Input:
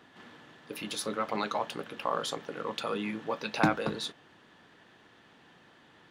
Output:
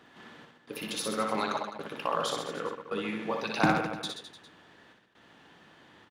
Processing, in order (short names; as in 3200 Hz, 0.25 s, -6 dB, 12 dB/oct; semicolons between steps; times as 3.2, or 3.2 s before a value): step gate "xx.xxxx.xx" 67 bpm -60 dB; on a send: reverse bouncing-ball echo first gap 60 ms, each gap 1.15×, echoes 5